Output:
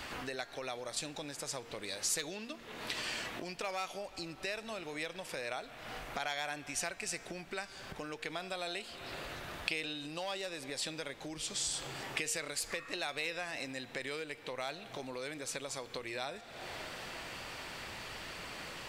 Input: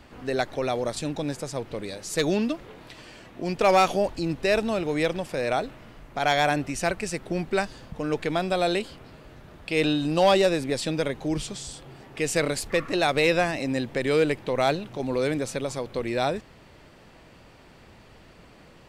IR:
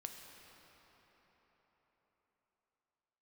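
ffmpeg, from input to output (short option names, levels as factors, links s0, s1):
-filter_complex "[0:a]bandreject=f=232.7:t=h:w=4,bandreject=f=465.4:t=h:w=4,bandreject=f=698.1:t=h:w=4,bandreject=f=930.8:t=h:w=4,bandreject=f=1163.5:t=h:w=4,bandreject=f=1396.2:t=h:w=4,bandreject=f=1628.9:t=h:w=4,bandreject=f=1861.6:t=h:w=4,bandreject=f=2094.3:t=h:w=4,bandreject=f=2327:t=h:w=4,bandreject=f=2559.7:t=h:w=4,bandreject=f=2792.4:t=h:w=4,bandreject=f=3025.1:t=h:w=4,bandreject=f=3257.8:t=h:w=4,bandreject=f=3490.5:t=h:w=4,bandreject=f=3723.2:t=h:w=4,bandreject=f=3955.9:t=h:w=4,bandreject=f=4188.6:t=h:w=4,bandreject=f=4421.3:t=h:w=4,bandreject=f=4654:t=h:w=4,bandreject=f=4886.7:t=h:w=4,bandreject=f=5119.4:t=h:w=4,bandreject=f=5352.1:t=h:w=4,bandreject=f=5584.8:t=h:w=4,bandreject=f=5817.5:t=h:w=4,bandreject=f=6050.2:t=h:w=4,bandreject=f=6282.9:t=h:w=4,bandreject=f=6515.6:t=h:w=4,bandreject=f=6748.3:t=h:w=4,bandreject=f=6981:t=h:w=4,bandreject=f=7213.7:t=h:w=4,bandreject=f=7446.4:t=h:w=4,bandreject=f=7679.1:t=h:w=4,bandreject=f=7911.8:t=h:w=4,asplit=2[s0][s1];[1:a]atrim=start_sample=2205,asetrate=61740,aresample=44100[s2];[s1][s2]afir=irnorm=-1:irlink=0,volume=0.376[s3];[s0][s3]amix=inputs=2:normalize=0,acompressor=threshold=0.00794:ratio=12,tiltshelf=f=700:g=-7.5,volume=1.68"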